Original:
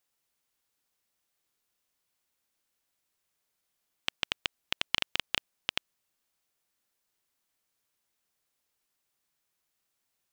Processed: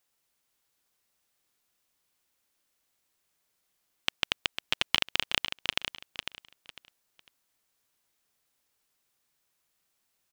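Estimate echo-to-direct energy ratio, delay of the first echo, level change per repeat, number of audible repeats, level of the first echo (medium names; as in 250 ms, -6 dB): -7.5 dB, 501 ms, -12.0 dB, 3, -8.0 dB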